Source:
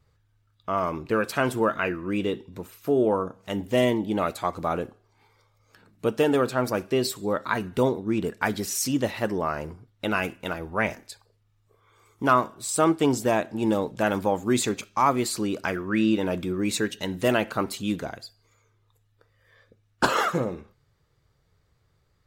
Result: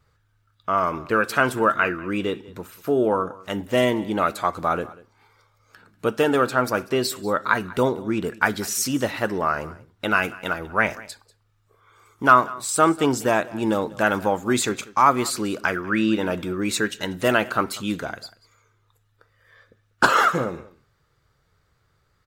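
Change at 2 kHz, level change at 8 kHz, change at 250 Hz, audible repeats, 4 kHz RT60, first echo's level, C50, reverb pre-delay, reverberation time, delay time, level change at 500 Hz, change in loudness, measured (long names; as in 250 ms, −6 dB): +7.0 dB, +3.0 dB, +1.0 dB, 1, no reverb audible, −20.5 dB, no reverb audible, no reverb audible, no reverb audible, 192 ms, +2.0 dB, +3.5 dB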